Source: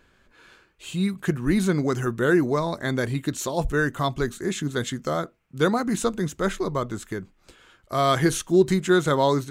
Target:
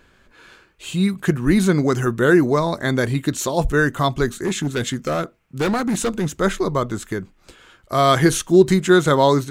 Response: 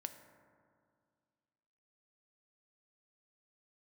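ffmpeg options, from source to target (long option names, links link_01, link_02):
-filter_complex "[0:a]asettb=1/sr,asplit=3[link_01][link_02][link_03];[link_01]atrim=end=4.294[link_04];[link_02]atrim=start=4.29:end=6.34,asetpts=PTS-STARTPTS,afade=type=in:duration=0.004:curve=qsin,afade=type=out:start_time=2.046:duration=0.004:curve=qsin,asoftclip=type=hard:threshold=-22dB[link_05];[link_03]atrim=start=6.336[link_06];[link_04][link_05]acrossfade=duration=0.004:curve1=hsin:curve2=qsin[link_07];[link_07][link_06]acrossfade=duration=0.004:curve1=qsin:curve2=hsin,volume=5.5dB"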